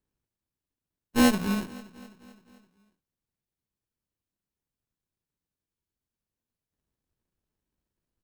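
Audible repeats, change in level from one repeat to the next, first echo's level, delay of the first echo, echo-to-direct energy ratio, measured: 4, -4.5 dB, -20.0 dB, 0.259 s, -18.0 dB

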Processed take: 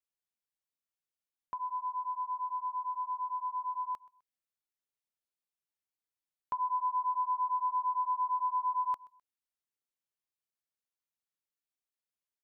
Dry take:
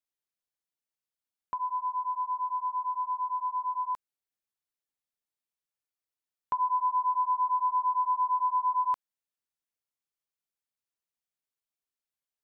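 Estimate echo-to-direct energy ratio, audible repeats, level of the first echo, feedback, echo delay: -22.5 dB, 2, -23.0 dB, 35%, 0.128 s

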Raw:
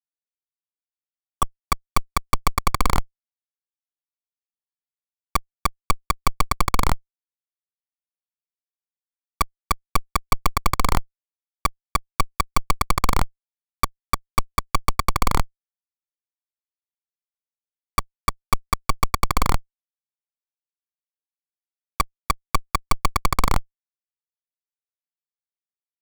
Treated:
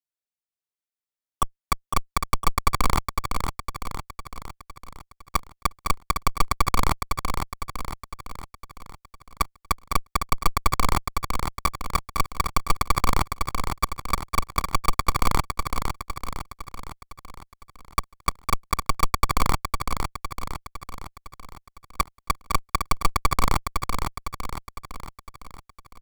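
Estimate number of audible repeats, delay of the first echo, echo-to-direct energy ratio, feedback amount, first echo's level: 6, 0.507 s, -4.0 dB, 53%, -5.5 dB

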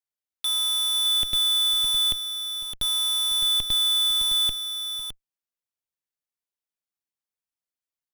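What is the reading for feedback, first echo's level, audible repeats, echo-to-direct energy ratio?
no steady repeat, -17.0 dB, 2, -8.0 dB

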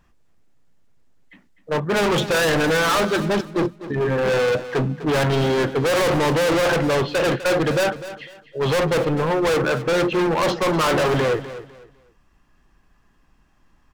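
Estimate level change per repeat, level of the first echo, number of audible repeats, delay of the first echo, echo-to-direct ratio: -11.5 dB, -14.0 dB, 2, 0.251 s, -13.5 dB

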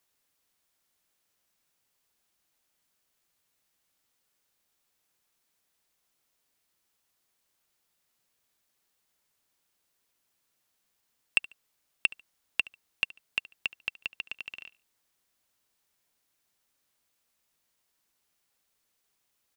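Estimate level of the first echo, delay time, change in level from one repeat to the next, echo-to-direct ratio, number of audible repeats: -21.0 dB, 72 ms, -11.5 dB, -20.5 dB, 2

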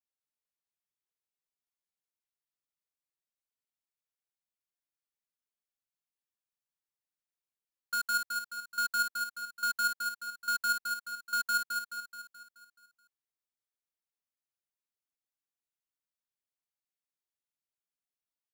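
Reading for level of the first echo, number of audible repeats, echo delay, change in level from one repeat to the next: -4.5 dB, 6, 0.214 s, -5.5 dB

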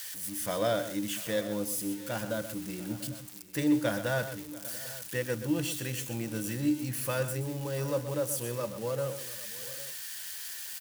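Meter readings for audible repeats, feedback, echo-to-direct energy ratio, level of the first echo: 3, no steady repeat, -10.0 dB, -11.0 dB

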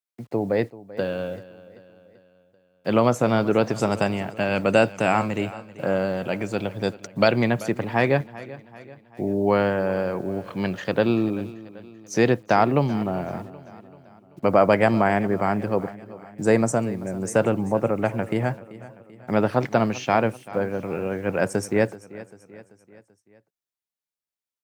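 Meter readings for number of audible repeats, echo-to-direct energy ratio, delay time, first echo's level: 3, -16.5 dB, 0.387 s, -18.0 dB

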